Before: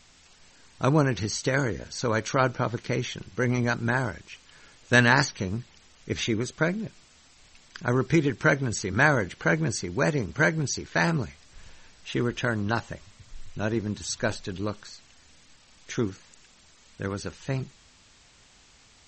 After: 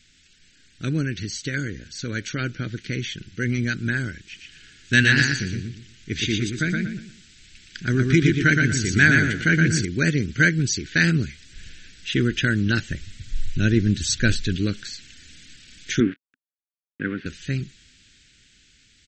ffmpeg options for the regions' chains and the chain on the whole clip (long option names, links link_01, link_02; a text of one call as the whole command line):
ffmpeg -i in.wav -filter_complex "[0:a]asettb=1/sr,asplit=3[link_01][link_02][link_03];[link_01]atrim=end=4.214[link_04];[link_02]atrim=start=4.21:end=9.85,asetpts=PTS-STARTPTS,afade=type=in:duration=0.004:curve=qsin,afade=type=out:start_time=5.636:duration=0.004:curve=qsin,bandreject=frequency=530:width=5.2,aecho=1:1:118|236|354|472:0.668|0.194|0.0562|0.0163,atrim=end_sample=248724[link_05];[link_03]atrim=start=9.846[link_06];[link_04][link_05]acrossfade=duration=0.004:curve1=hsin:curve2=qsin[link_07];[link_07][link_06]acrossfade=duration=0.004:curve1=qsin:curve2=hsin,asettb=1/sr,asplit=3[link_08][link_09][link_10];[link_08]atrim=end=12.914[link_11];[link_09]atrim=start=12.91:end=14.56,asetpts=PTS-STARTPTS,afade=type=in:duration=0.004:curve=qsin,afade=type=out:start_time=1.646:duration=0.004:curve=qsin,lowshelf=frequency=87:gain=9.5,bandreject=frequency=980:width=8.5[link_12];[link_10]atrim=start=14.556[link_13];[link_11][link_12]acrossfade=duration=0.004:curve1=hsin:curve2=qsin[link_14];[link_14][link_13]acrossfade=duration=0.004:curve1=qsin:curve2=hsin,asettb=1/sr,asplit=3[link_15][link_16][link_17];[link_15]atrim=end=16.004[link_18];[link_16]atrim=start=16:end=17.26,asetpts=PTS-STARTPTS,afade=type=in:duration=0.004:curve=qsin,afade=type=out:start_time=1.256:duration=0.004:curve=qsin,aeval=exprs='val(0)*gte(abs(val(0)),0.0112)':channel_layout=same,highpass=180,equalizer=frequency=260:width_type=q:width=4:gain=6,equalizer=frequency=1100:width_type=q:width=4:gain=6,equalizer=frequency=1600:width_type=q:width=4:gain=4,lowpass=frequency=2600:width=0.5412,lowpass=frequency=2600:width=1.3066[link_19];[link_17]atrim=start=17.256[link_20];[link_18][link_19]acrossfade=duration=0.004:curve1=hsin:curve2=qsin[link_21];[link_21][link_20]acrossfade=duration=0.004:curve1=qsin:curve2=hsin,firequalizer=gain_entry='entry(300,0);entry(650,-20);entry(1000,-29);entry(1500,0);entry(3400,3);entry(5200,-1)':delay=0.05:min_phase=1,dynaudnorm=framelen=460:gausssize=11:maxgain=11dB,volume=-1dB" out.wav